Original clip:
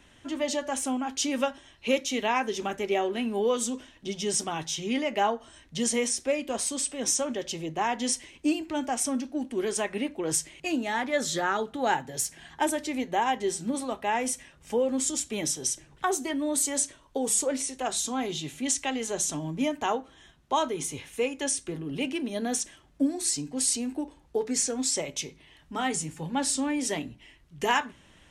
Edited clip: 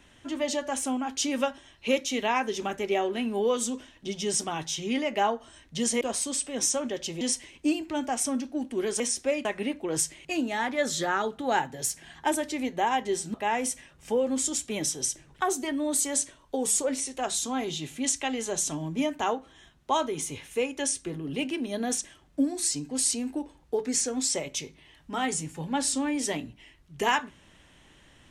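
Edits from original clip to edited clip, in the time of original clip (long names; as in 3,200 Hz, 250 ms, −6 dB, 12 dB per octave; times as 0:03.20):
0:06.01–0:06.46: move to 0:09.80
0:07.66–0:08.01: remove
0:13.69–0:13.96: remove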